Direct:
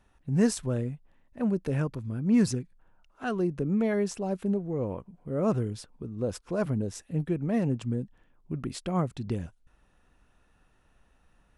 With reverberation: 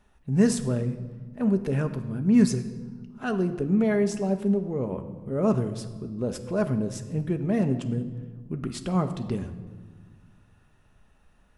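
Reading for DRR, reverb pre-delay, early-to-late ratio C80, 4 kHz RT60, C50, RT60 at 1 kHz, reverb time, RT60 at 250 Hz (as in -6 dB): 6.5 dB, 5 ms, 13.0 dB, 1.0 s, 11.5 dB, 1.4 s, 1.5 s, 2.3 s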